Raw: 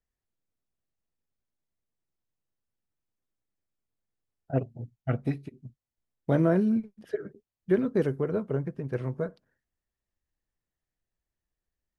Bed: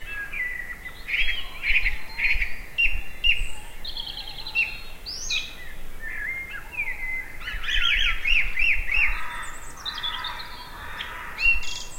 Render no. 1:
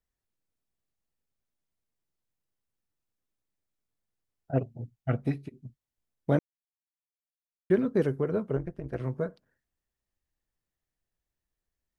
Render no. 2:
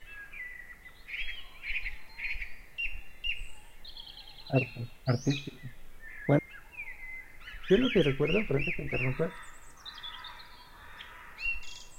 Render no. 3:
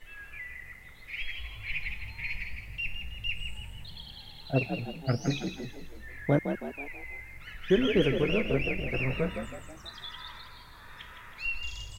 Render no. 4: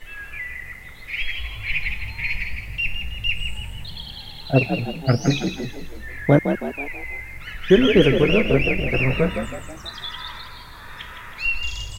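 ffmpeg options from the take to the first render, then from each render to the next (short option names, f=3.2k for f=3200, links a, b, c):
-filter_complex "[0:a]asettb=1/sr,asplit=3[a][b][c];[a]atrim=end=8.574[d];[b]atrim=start=8.57:end=9,asetpts=PTS-STARTPTS,afade=t=in:d=0.004:c=qsin,afade=t=out:st=0.426:d=0.004:c=qsin,tremolo=f=190:d=0.889[e];[c]atrim=start=8.996[f];[d][e]acrossfade=d=0.004:c1=hsin:c2=qsin[g];[g][f]acrossfade=d=0.004:c1=qsin:c2=hsin,asplit=3[h][i][j];[h]atrim=end=6.39,asetpts=PTS-STARTPTS,afade=t=out:st=6.386:d=0.004:c=hsin[k];[i]atrim=start=6.39:end=7.7,asetpts=PTS-STARTPTS,volume=0[l];[j]atrim=start=7.7,asetpts=PTS-STARTPTS,afade=t=in:d=0.004:c=hsin[m];[k][l][m]concat=n=3:v=0:a=1"
-filter_complex "[1:a]volume=-13.5dB[a];[0:a][a]amix=inputs=2:normalize=0"
-filter_complex "[0:a]asplit=6[a][b][c][d][e][f];[b]adelay=162,afreqshift=46,volume=-7.5dB[g];[c]adelay=324,afreqshift=92,volume=-14.1dB[h];[d]adelay=486,afreqshift=138,volume=-20.6dB[i];[e]adelay=648,afreqshift=184,volume=-27.2dB[j];[f]adelay=810,afreqshift=230,volume=-33.7dB[k];[a][g][h][i][j][k]amix=inputs=6:normalize=0"
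-af "volume=10dB"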